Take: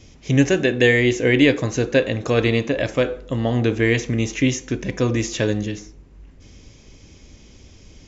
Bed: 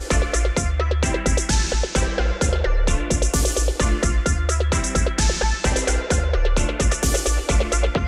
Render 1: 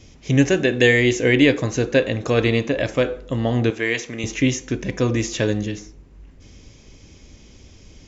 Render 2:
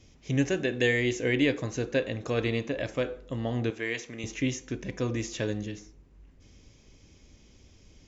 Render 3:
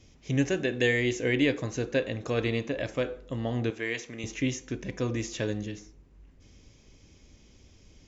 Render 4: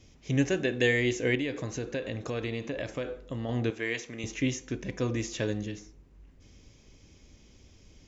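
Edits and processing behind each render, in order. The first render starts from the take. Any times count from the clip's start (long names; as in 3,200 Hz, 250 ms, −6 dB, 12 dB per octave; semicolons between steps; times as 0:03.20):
0:00.72–0:01.35: high-shelf EQ 4,300 Hz +5 dB; 0:03.70–0:04.24: high-pass filter 650 Hz 6 dB per octave
level −10 dB
no processing that can be heard
0:01.35–0:03.49: downward compressor 3 to 1, threshold −30 dBFS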